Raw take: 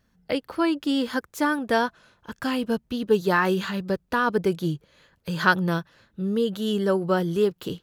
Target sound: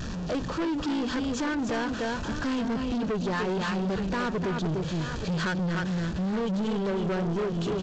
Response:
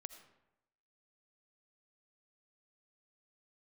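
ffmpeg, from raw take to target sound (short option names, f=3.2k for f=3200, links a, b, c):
-filter_complex "[0:a]aeval=exprs='val(0)+0.5*0.0251*sgn(val(0))':c=same,lowshelf=f=330:g=8.5,bandreject=f=50.12:t=h:w=4,bandreject=f=100.24:t=h:w=4,bandreject=f=150.36:t=h:w=4,bandreject=f=200.48:t=h:w=4,bandreject=f=250.6:t=h:w=4,bandreject=f=300.72:t=h:w=4,bandreject=f=350.84:t=h:w=4,asplit=2[a][b];[b]aecho=0:1:297|872:0.473|0.141[c];[a][c]amix=inputs=2:normalize=0,acompressor=threshold=-17dB:ratio=6,asuperstop=centerf=2100:order=4:qfactor=6.6,aresample=16000,asoftclip=type=tanh:threshold=-25.5dB,aresample=44100"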